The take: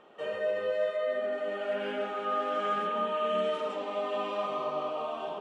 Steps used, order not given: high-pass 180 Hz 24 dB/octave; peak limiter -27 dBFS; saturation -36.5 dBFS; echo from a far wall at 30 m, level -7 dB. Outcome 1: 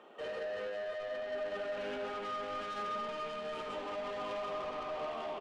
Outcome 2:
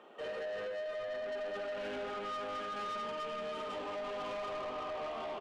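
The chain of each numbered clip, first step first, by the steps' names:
peak limiter > high-pass > saturation > echo from a far wall; high-pass > peak limiter > echo from a far wall > saturation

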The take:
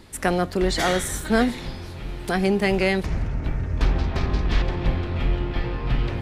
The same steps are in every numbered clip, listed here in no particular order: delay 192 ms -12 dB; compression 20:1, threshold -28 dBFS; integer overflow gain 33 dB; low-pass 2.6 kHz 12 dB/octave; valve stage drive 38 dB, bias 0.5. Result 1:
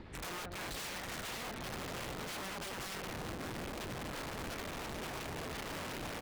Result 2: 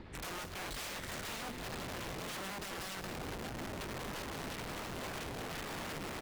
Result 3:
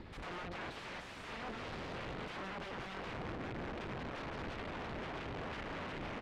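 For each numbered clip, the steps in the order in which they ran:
low-pass > compression > delay > integer overflow > valve stage; low-pass > compression > integer overflow > delay > valve stage; delay > compression > integer overflow > valve stage > low-pass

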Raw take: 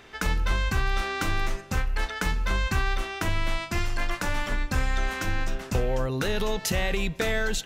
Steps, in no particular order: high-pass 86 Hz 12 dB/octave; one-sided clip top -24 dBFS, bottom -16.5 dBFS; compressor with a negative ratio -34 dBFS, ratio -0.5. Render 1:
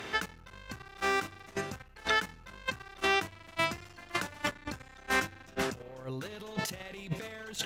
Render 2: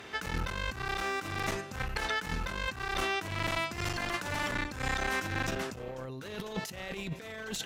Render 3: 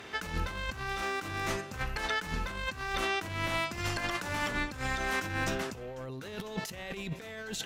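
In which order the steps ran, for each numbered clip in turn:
one-sided clip > compressor with a negative ratio > high-pass; one-sided clip > high-pass > compressor with a negative ratio; high-pass > one-sided clip > compressor with a negative ratio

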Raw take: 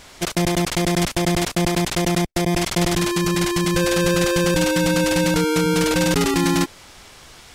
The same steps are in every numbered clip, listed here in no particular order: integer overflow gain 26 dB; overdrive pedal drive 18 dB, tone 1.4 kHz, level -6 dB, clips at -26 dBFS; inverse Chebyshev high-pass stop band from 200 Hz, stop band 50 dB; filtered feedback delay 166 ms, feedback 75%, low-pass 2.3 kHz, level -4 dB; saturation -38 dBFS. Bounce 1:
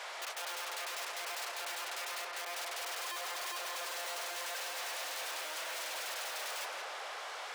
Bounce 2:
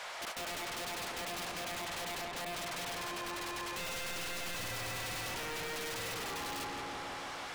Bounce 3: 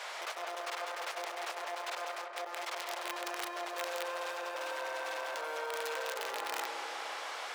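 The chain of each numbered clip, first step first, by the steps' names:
overdrive pedal > integer overflow > filtered feedback delay > saturation > inverse Chebyshev high-pass; overdrive pedal > inverse Chebyshev high-pass > integer overflow > filtered feedback delay > saturation; saturation > overdrive pedal > filtered feedback delay > integer overflow > inverse Chebyshev high-pass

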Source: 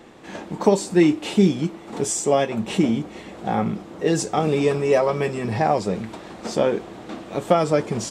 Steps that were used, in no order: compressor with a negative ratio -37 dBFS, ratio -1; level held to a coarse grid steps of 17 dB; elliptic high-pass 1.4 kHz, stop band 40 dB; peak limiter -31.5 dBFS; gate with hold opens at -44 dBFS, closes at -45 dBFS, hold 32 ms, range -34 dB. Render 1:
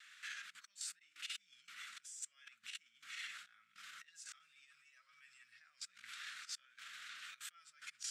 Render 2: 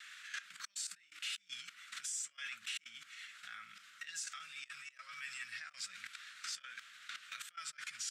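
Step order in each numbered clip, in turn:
gate with hold > compressor with a negative ratio > level held to a coarse grid > peak limiter > elliptic high-pass; gate with hold > level held to a coarse grid > compressor with a negative ratio > elliptic high-pass > peak limiter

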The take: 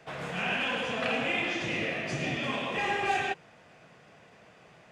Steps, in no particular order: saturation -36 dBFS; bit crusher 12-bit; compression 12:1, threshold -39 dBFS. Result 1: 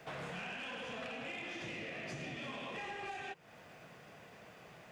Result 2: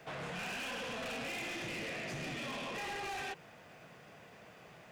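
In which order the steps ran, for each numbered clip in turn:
bit crusher > compression > saturation; bit crusher > saturation > compression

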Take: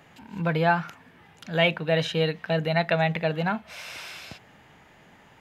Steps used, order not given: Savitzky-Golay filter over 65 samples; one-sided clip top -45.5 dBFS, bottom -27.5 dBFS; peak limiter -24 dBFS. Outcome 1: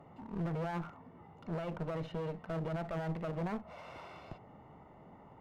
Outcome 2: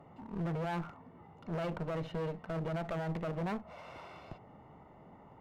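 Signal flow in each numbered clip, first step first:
peak limiter > Savitzky-Golay filter > one-sided clip; Savitzky-Golay filter > peak limiter > one-sided clip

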